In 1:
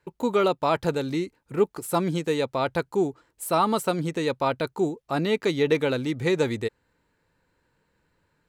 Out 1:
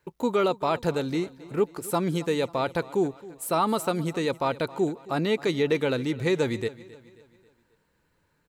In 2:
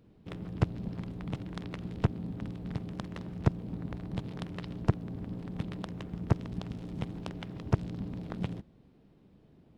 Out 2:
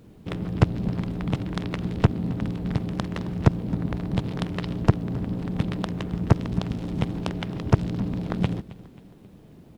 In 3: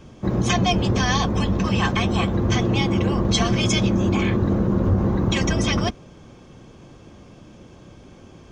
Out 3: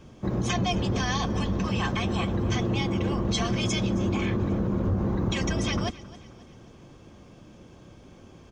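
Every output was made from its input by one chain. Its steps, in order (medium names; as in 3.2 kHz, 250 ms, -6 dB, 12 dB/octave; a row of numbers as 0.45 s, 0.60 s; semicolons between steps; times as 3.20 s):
in parallel at +2 dB: peak limiter -15.5 dBFS; on the sum: word length cut 12-bit, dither none; feedback delay 268 ms, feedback 45%, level -19 dB; normalise loudness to -27 LUFS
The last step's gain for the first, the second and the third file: -7.5 dB, +3.5 dB, -11.5 dB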